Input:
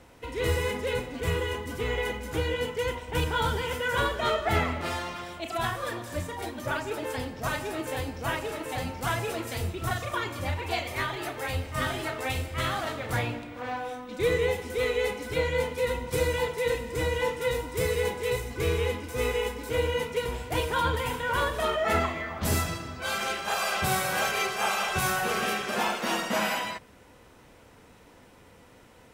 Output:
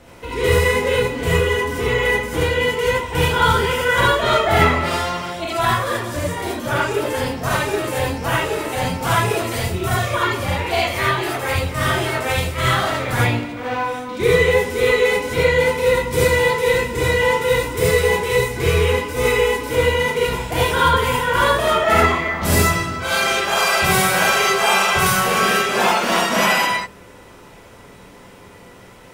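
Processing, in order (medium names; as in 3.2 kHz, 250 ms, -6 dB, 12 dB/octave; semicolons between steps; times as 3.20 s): gated-style reverb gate 100 ms rising, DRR -5 dB; trim +5.5 dB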